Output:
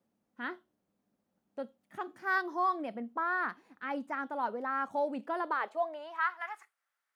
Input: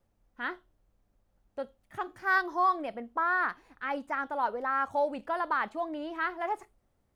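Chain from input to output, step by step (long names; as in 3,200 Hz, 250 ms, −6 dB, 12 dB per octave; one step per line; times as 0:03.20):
high-pass filter sweep 210 Hz → 1,500 Hz, 0:05.12–0:06.47
level −4.5 dB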